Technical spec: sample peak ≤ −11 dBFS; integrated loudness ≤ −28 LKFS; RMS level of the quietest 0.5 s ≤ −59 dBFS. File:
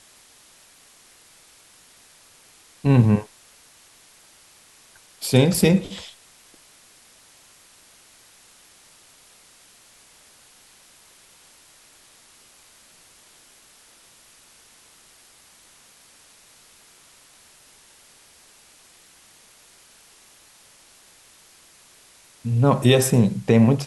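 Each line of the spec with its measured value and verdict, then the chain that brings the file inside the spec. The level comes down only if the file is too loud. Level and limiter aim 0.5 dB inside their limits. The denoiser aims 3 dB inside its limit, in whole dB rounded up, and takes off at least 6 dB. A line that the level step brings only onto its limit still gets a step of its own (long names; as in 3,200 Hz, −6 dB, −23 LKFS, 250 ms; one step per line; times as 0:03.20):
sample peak −4.0 dBFS: out of spec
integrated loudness −19.0 LKFS: out of spec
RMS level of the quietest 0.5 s −53 dBFS: out of spec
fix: level −9.5 dB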